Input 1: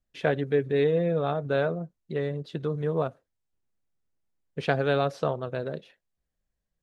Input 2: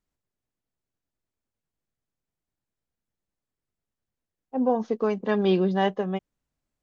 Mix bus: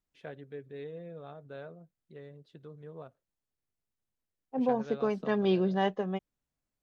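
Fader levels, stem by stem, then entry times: −19.0, −5.0 decibels; 0.00, 0.00 seconds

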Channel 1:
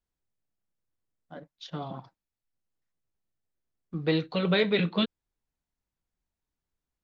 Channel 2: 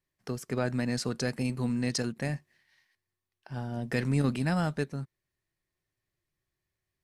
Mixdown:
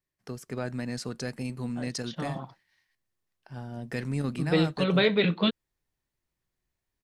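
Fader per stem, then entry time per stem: +1.5, −3.5 decibels; 0.45, 0.00 seconds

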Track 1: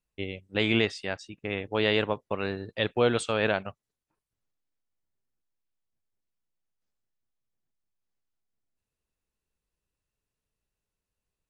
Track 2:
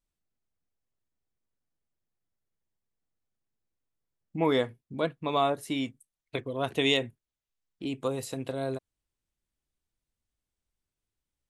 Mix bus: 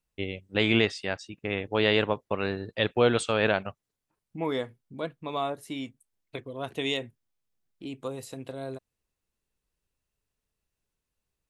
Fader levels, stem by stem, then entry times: +1.5, −4.5 decibels; 0.00, 0.00 seconds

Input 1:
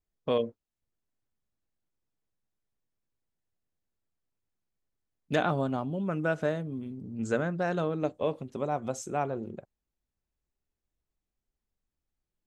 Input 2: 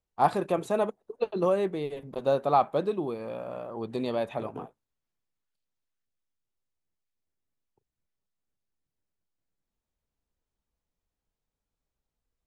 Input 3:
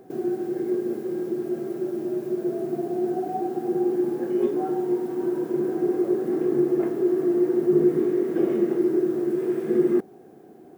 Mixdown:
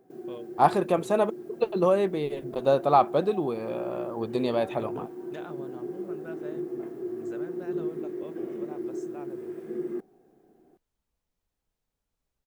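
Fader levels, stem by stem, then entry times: −15.5, +3.0, −12.5 decibels; 0.00, 0.40, 0.00 seconds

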